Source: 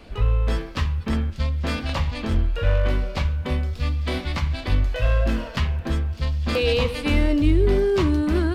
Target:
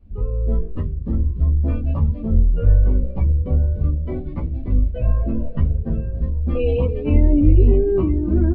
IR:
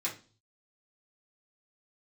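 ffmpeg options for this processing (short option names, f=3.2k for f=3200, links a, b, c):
-filter_complex "[0:a]lowpass=3.9k,tiltshelf=f=630:g=7.5,asplit=2[a][b];[b]asplit=5[c][d][e][f][g];[c]adelay=291,afreqshift=-52,volume=-10dB[h];[d]adelay=582,afreqshift=-104,volume=-17.1dB[i];[e]adelay=873,afreqshift=-156,volume=-24.3dB[j];[f]adelay=1164,afreqshift=-208,volume=-31.4dB[k];[g]adelay=1455,afreqshift=-260,volume=-38.5dB[l];[h][i][j][k][l]amix=inputs=5:normalize=0[m];[a][m]amix=inputs=2:normalize=0,afftdn=nr=19:nf=-29,asplit=2[n][o];[o]aecho=0:1:922:0.2[p];[n][p]amix=inputs=2:normalize=0,asplit=2[q][r];[r]adelay=11.8,afreqshift=0.57[s];[q][s]amix=inputs=2:normalize=1"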